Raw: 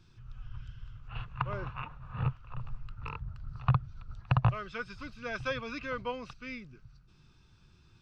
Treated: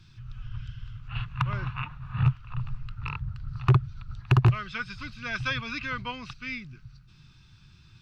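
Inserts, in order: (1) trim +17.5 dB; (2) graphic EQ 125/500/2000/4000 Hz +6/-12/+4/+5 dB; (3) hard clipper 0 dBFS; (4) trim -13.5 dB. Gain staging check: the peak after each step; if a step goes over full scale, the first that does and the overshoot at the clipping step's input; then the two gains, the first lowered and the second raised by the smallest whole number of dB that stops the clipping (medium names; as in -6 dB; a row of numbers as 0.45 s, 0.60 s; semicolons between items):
+4.5 dBFS, +6.0 dBFS, 0.0 dBFS, -13.5 dBFS; step 1, 6.0 dB; step 1 +11.5 dB, step 4 -7.5 dB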